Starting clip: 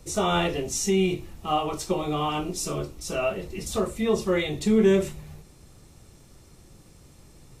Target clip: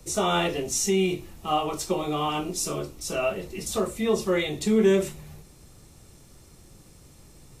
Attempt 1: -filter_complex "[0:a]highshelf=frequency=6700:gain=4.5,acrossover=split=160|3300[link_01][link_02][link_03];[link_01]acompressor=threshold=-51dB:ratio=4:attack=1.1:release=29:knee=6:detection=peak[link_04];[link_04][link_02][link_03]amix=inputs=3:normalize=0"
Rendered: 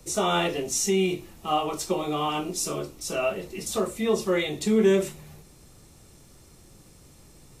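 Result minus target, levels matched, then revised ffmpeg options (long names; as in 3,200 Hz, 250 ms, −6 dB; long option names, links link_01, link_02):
downward compressor: peak gain reduction +6.5 dB
-filter_complex "[0:a]highshelf=frequency=6700:gain=4.5,acrossover=split=160|3300[link_01][link_02][link_03];[link_01]acompressor=threshold=-42.5dB:ratio=4:attack=1.1:release=29:knee=6:detection=peak[link_04];[link_04][link_02][link_03]amix=inputs=3:normalize=0"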